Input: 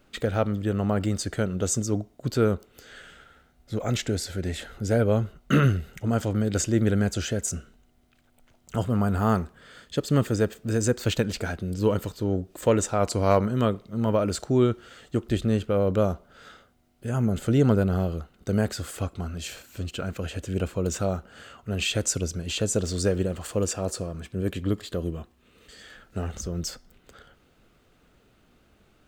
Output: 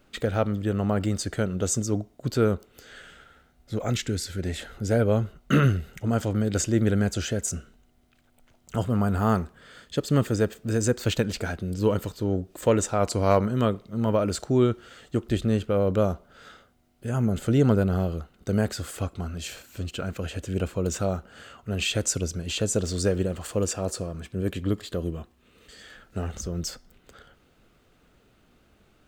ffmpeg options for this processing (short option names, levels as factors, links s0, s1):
-filter_complex "[0:a]asettb=1/sr,asplit=3[s0][s1][s2];[s0]atrim=end=3.934[s3];[s1]atrim=start=3.93:end=4.39,asetpts=PTS-STARTPTS,afade=t=in:d=0.004:c=qsin,afade=t=out:st=0.456:d=0.004:c=qsin,equalizer=f=670:t=o:w=0.82:g=-12[s4];[s2]atrim=start=4.386[s5];[s3][s4]acrossfade=d=0.004:c1=hsin:c2=qsin[s6];[s6][s5]acrossfade=d=0.004:c1=qsin:c2=hsin"